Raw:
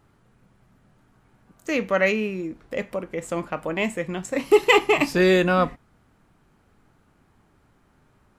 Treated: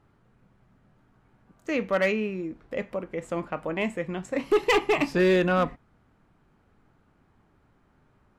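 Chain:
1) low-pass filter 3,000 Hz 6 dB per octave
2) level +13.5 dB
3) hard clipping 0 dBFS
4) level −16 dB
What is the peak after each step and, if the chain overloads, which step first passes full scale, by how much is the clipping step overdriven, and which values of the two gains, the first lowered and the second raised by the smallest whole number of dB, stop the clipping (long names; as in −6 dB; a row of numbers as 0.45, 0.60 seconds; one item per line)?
−4.5, +9.0, 0.0, −16.0 dBFS
step 2, 9.0 dB
step 2 +4.5 dB, step 4 −7 dB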